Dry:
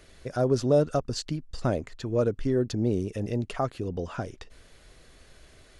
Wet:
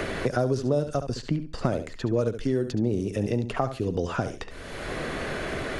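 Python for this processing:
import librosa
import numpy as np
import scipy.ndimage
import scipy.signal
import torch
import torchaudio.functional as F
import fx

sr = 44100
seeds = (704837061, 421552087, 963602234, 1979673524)

y = fx.echo_feedback(x, sr, ms=69, feedback_pct=17, wet_db=-11)
y = fx.band_squash(y, sr, depth_pct=100)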